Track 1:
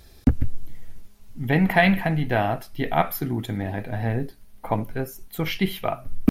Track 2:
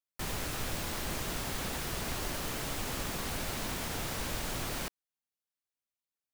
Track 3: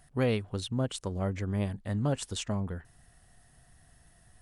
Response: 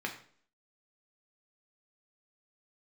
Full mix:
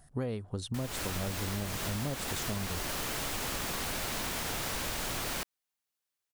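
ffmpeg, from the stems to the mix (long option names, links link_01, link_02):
-filter_complex "[1:a]dynaudnorm=framelen=240:gausssize=3:maxgain=7dB,lowshelf=frequency=470:gain=-5,adelay=550,volume=-1.5dB[link_01];[2:a]equalizer=frequency=2600:width=1.2:gain=-8,volume=1.5dB[link_02];[link_01][link_02]amix=inputs=2:normalize=0,acompressor=threshold=-31dB:ratio=6"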